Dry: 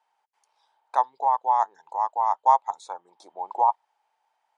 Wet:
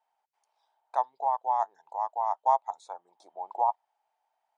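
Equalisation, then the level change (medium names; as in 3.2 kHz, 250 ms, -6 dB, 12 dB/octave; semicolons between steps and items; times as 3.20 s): peaking EQ 680 Hz +8.5 dB 0.45 oct; -8.5 dB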